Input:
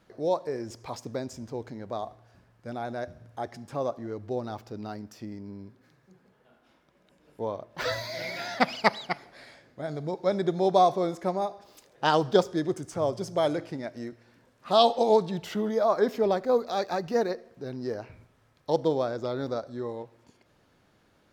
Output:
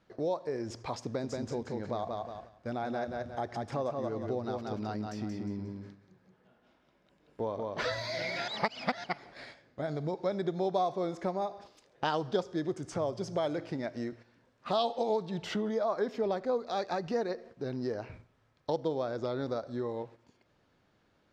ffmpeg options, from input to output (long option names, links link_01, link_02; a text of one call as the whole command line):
ffmpeg -i in.wav -filter_complex "[0:a]asettb=1/sr,asplit=3[link_01][link_02][link_03];[link_01]atrim=end=1.014[link_04];[link_02]atrim=start=1.01:end=7.91,asetpts=PTS-STARTPTS,afade=type=in:duration=0.004:curve=qsin,afade=type=out:start_time=6.896:duration=0.004:curve=qsin,aecho=1:1:179|358|537|716:0.596|0.208|0.073|0.0255,atrim=end_sample=304290[link_05];[link_03]atrim=start=7.906[link_06];[link_04][link_05]acrossfade=duration=0.004:curve1=hsin:curve2=qsin[link_07];[link_07][link_06]acrossfade=duration=0.004:curve1=qsin:curve2=hsin,asplit=3[link_08][link_09][link_10];[link_08]atrim=end=8.482[link_11];[link_09]atrim=start=8.478:end=9.042,asetpts=PTS-STARTPTS,areverse[link_12];[link_10]atrim=start=9.038[link_13];[link_11][link_12]acrossfade=duration=0.004:curve1=hsin:curve2=hsin[link_14];[link_14][link_13]acrossfade=duration=0.004:curve1=hsin:curve2=hsin,lowpass=6300,agate=range=-8dB:threshold=-50dB:ratio=16:detection=peak,acompressor=threshold=-35dB:ratio=2.5,volume=2.5dB" out.wav